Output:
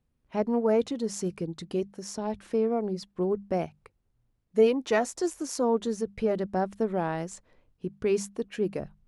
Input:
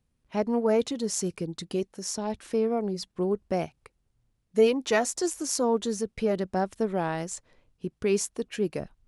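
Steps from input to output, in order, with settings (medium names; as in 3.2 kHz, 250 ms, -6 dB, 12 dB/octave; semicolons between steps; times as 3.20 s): treble shelf 2.9 kHz -8.5 dB; hum notches 50/100/150/200 Hz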